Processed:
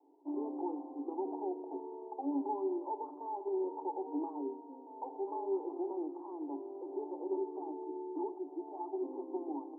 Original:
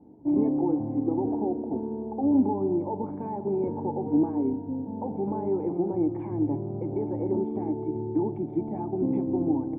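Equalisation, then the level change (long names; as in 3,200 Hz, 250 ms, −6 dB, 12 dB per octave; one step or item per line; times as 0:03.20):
Chebyshev high-pass with heavy ripple 270 Hz, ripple 9 dB
Butterworth low-pass 1,000 Hz 36 dB per octave
spectral tilt +4.5 dB per octave
0.0 dB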